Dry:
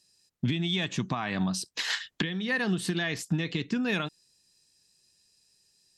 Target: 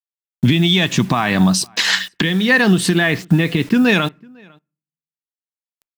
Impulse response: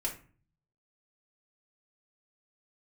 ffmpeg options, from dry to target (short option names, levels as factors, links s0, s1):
-filter_complex "[0:a]asettb=1/sr,asplit=3[s0][s1][s2];[s0]atrim=end=2.944[s3];[s1]atrim=start=2.94:end=3.74,asetpts=PTS-STARTPTS,afade=t=in:d=0.004:c=qsin,afade=t=out:st=0.796:d=0.004:c=qsin,lowpass=2900[s4];[s2]atrim=start=3.736[s5];[s3][s4]acrossfade=d=0.004:c1=hsin:c2=qsin[s6];[s6][s5]acrossfade=d=0.004:c1=qsin:c2=hsin,acrusher=bits=8:mix=0:aa=0.000001,asplit=2[s7][s8];[s8]adelay=501.5,volume=0.0355,highshelf=f=4000:g=-11.3[s9];[s7][s9]amix=inputs=2:normalize=0,asplit=2[s10][s11];[1:a]atrim=start_sample=2205,lowpass=3500[s12];[s11][s12]afir=irnorm=-1:irlink=0,volume=0.0562[s13];[s10][s13]amix=inputs=2:normalize=0,alimiter=level_in=8.41:limit=0.891:release=50:level=0:latency=1,volume=0.668"